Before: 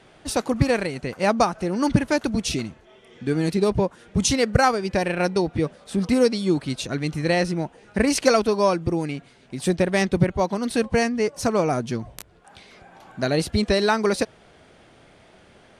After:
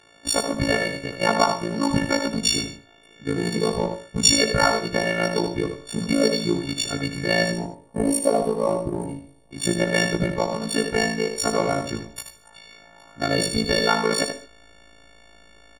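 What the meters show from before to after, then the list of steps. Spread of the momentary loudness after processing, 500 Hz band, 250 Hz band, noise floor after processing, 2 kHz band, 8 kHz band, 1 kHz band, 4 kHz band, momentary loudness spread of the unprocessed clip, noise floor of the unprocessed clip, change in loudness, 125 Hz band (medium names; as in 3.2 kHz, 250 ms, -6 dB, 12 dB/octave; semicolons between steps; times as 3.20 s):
11 LU, -1.5 dB, -2.0 dB, -53 dBFS, +2.5 dB, +4.5 dB, -0.5 dB, +6.0 dB, 9 LU, -53 dBFS, 0.0 dB, -3.0 dB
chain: partials quantised in pitch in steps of 4 st; treble shelf 11 kHz -9 dB; time-frequency box 7.52–9.52 s, 1.1–8.5 kHz -18 dB; in parallel at -5 dB: hysteresis with a dead band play -20.5 dBFS; on the sum: AM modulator 55 Hz, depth 80%; on a send: delay 79 ms -7.5 dB; on the sum: gated-style reverb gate 170 ms flat, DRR 12 dB; trim -2.5 dB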